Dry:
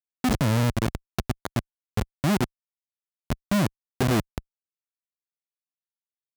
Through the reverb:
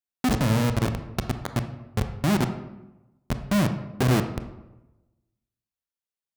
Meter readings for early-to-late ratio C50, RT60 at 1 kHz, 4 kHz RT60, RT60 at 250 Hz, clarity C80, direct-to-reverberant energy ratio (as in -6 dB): 9.5 dB, 1.0 s, 0.60 s, 1.1 s, 12.0 dB, 7.5 dB